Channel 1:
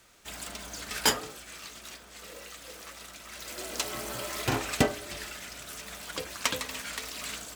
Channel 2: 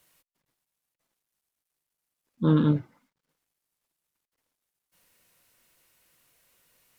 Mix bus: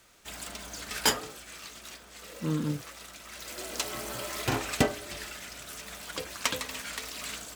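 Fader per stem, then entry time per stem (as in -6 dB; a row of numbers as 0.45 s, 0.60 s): -0.5 dB, -9.0 dB; 0.00 s, 0.00 s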